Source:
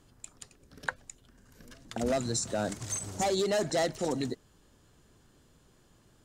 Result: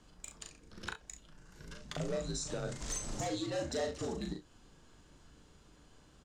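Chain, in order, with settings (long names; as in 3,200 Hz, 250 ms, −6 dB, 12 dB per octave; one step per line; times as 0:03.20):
low-pass filter 7,700 Hz 12 dB per octave
downward compressor 16 to 1, threshold −36 dBFS, peak gain reduction 12 dB
asymmetric clip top −32.5 dBFS
frequency shifter −73 Hz
tuned comb filter 150 Hz, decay 0.19 s, harmonics all, mix 50%
ambience of single reflections 38 ms −4 dB, 67 ms −12 dB
level +5 dB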